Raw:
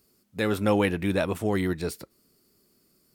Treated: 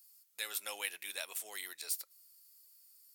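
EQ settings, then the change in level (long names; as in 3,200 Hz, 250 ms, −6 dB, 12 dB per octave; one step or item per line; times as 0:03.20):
dynamic equaliser 1,200 Hz, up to −5 dB, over −43 dBFS, Q 1.3
high-pass filter 660 Hz 12 dB per octave
first difference
+3.0 dB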